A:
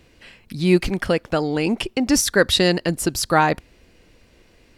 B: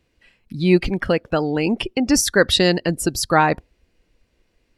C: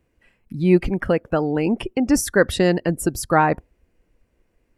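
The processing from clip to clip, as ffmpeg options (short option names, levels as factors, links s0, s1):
-af "afftdn=nr=14:nf=-34,volume=1.12"
-af "equalizer=f=4100:t=o:w=1.3:g=-13"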